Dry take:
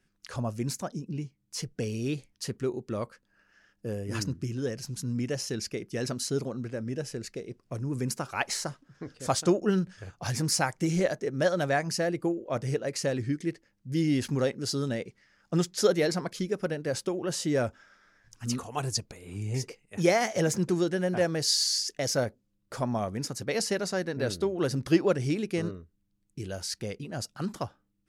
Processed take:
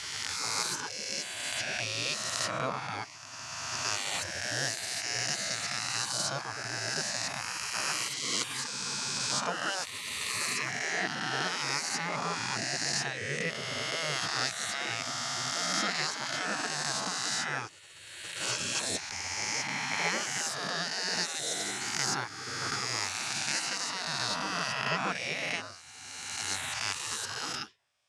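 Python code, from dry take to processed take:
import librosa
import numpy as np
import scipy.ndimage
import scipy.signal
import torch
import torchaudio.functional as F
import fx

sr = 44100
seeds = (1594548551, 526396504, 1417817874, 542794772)

y = fx.spec_swells(x, sr, rise_s=2.55)
y = scipy.signal.sosfilt(scipy.signal.butter(2, 270.0, 'highpass', fs=sr, output='sos'), y)
y = fx.spec_gate(y, sr, threshold_db=-15, keep='weak')
y = scipy.signal.sosfilt(scipy.signal.butter(2, 6600.0, 'lowpass', fs=sr, output='sos'), y)
y = fx.rider(y, sr, range_db=5, speed_s=0.5)
y = F.gain(torch.from_numpy(y), 2.5).numpy()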